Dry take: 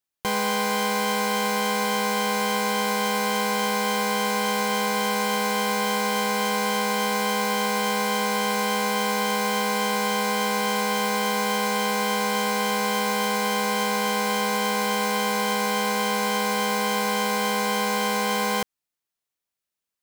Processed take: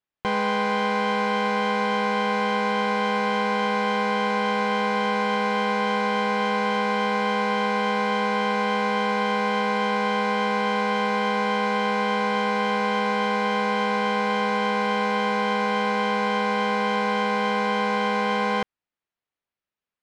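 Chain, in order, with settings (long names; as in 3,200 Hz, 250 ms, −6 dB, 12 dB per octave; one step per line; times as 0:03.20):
low-pass filter 2,800 Hz 12 dB per octave
level +1.5 dB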